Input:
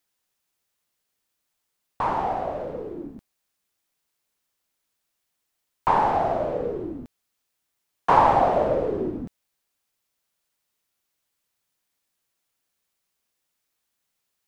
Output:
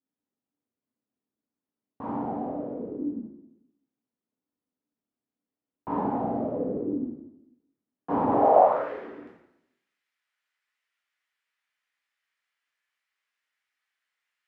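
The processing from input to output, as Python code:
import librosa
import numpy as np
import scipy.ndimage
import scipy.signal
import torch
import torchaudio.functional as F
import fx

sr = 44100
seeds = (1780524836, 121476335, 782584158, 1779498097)

y = fx.rev_plate(x, sr, seeds[0], rt60_s=0.85, hf_ratio=0.85, predelay_ms=0, drr_db=-5.5)
y = fx.filter_sweep_bandpass(y, sr, from_hz=250.0, to_hz=1900.0, start_s=8.28, end_s=8.91, q=2.2)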